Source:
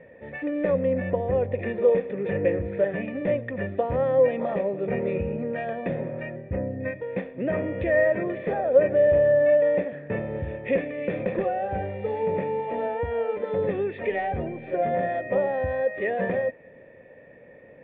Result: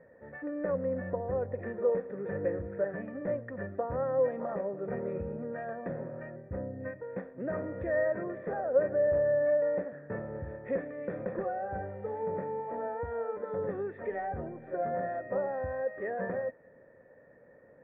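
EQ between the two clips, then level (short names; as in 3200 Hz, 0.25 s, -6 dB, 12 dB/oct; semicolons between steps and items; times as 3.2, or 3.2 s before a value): resonant high shelf 2000 Hz -11 dB, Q 3; -9.0 dB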